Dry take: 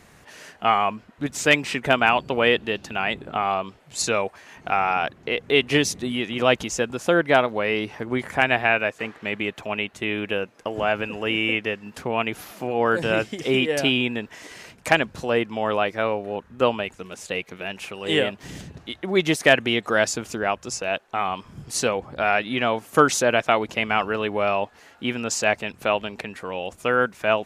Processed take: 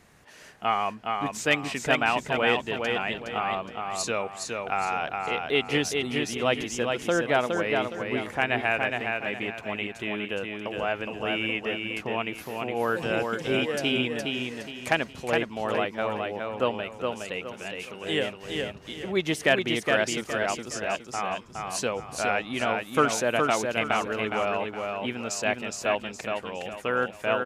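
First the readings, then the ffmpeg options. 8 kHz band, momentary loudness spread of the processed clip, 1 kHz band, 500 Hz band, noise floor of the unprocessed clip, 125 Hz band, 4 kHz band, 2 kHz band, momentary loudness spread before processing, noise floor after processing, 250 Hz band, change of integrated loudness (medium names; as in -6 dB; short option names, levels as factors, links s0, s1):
-4.5 dB, 8 LU, -4.5 dB, -4.5 dB, -53 dBFS, -4.5 dB, -4.5 dB, -4.5 dB, 12 LU, -46 dBFS, -4.5 dB, -4.5 dB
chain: -af "aecho=1:1:415|830|1245|1660:0.631|0.215|0.0729|0.0248,volume=0.501"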